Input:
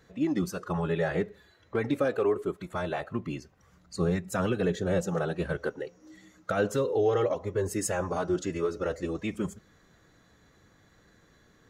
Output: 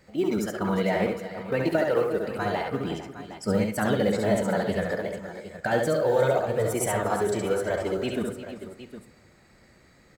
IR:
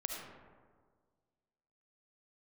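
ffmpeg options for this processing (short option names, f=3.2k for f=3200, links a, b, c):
-filter_complex "[0:a]acrusher=bits=9:mode=log:mix=0:aa=0.000001,aecho=1:1:79|405|520|876:0.631|0.2|0.2|0.224,asetrate=50715,aresample=44100,asplit=2[a][b];[1:a]atrim=start_sample=2205,asetrate=79380,aresample=44100[c];[b][c]afir=irnorm=-1:irlink=0,volume=-5dB[d];[a][d]amix=inputs=2:normalize=0"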